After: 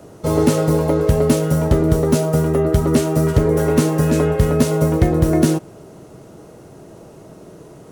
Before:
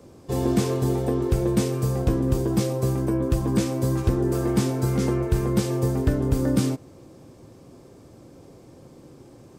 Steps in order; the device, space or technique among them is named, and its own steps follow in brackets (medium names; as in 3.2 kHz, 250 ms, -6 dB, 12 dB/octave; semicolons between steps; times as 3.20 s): nightcore (tape speed +21%); trim +7 dB